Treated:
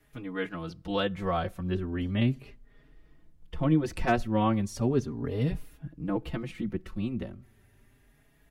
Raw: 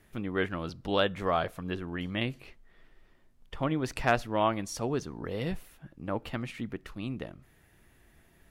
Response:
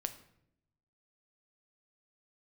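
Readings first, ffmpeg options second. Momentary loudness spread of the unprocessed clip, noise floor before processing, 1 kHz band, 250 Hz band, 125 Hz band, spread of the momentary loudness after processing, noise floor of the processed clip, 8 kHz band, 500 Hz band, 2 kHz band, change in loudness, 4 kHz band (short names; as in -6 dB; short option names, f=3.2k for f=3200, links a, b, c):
12 LU, -62 dBFS, -1.0 dB, +5.0 dB, +6.0 dB, 12 LU, -63 dBFS, -3.0 dB, -0.5 dB, -3.0 dB, +2.0 dB, -3.0 dB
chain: -filter_complex "[0:a]acrossover=split=390|550|3200[a][b][c][d];[a]dynaudnorm=f=250:g=11:m=10dB[e];[e][b][c][d]amix=inputs=4:normalize=0,asplit=2[f][g];[g]adelay=4.4,afreqshift=0.36[h];[f][h]amix=inputs=2:normalize=1"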